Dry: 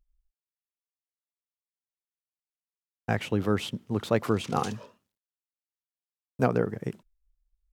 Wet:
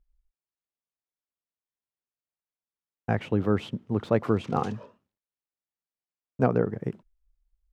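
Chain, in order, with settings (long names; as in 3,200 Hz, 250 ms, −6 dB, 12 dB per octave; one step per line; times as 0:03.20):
low-pass filter 1,300 Hz 6 dB per octave
level +2 dB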